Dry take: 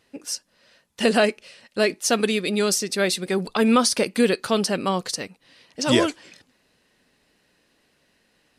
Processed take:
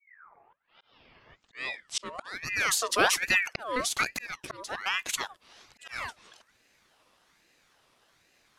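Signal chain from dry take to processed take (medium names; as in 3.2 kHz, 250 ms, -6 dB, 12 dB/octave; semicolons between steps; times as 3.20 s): tape start-up on the opening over 2.66 s; slow attack 773 ms; ring modulator with a swept carrier 1.5 kHz, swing 50%, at 1.2 Hz; trim +1.5 dB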